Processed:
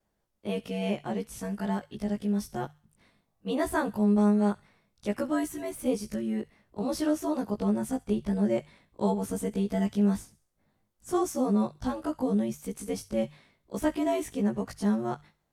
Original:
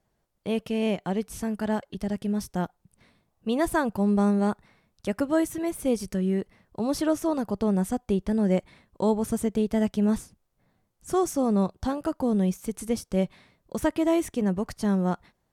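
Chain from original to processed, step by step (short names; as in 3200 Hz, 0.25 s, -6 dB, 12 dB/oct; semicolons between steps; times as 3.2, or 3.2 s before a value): short-time reversal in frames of 39 ms; notches 50/100/150 Hz; thin delay 67 ms, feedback 38%, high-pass 1900 Hz, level -17 dB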